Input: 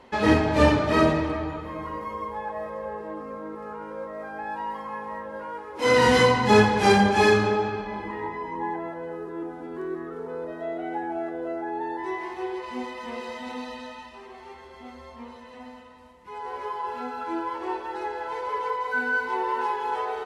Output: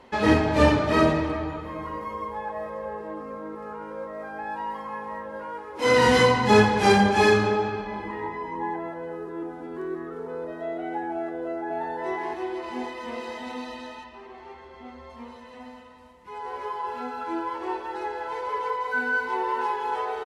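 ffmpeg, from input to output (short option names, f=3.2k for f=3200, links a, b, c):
-filter_complex "[0:a]asplit=2[a][b];[b]afade=t=in:st=11.15:d=0.01,afade=t=out:st=11.79:d=0.01,aecho=0:1:550|1100|1650|2200|2750|3300:0.794328|0.357448|0.160851|0.0723832|0.0325724|0.0146576[c];[a][c]amix=inputs=2:normalize=0,asettb=1/sr,asplit=3[d][e][f];[d]atrim=end=14.044[g];[e]atrim=start=14.04:end=15.1,asetpts=PTS-STARTPTS,afade=t=in:d=0.004:c=qsin,afade=t=out:st=1.056:d=0.004:c=qsin,aemphasis=mode=reproduction:type=50fm[h];[f]atrim=start=15.096[i];[g][h]acrossfade=d=0.004:c1=hsin:c2=qsin[j];[j][i]acrossfade=d=0.004:c1=qsin:c2=hsin"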